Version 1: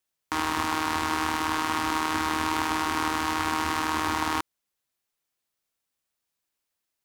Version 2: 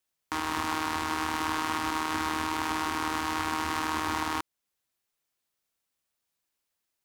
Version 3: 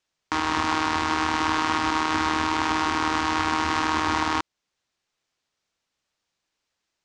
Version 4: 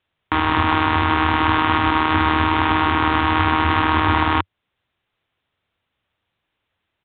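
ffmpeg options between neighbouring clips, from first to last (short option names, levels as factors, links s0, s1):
-af "alimiter=limit=0.188:level=0:latency=1:release=303"
-af "lowpass=f=6700:w=0.5412,lowpass=f=6700:w=1.3066,volume=2.11"
-af "equalizer=f=91:w=1.5:g=10.5,aresample=8000,aresample=44100,volume=2"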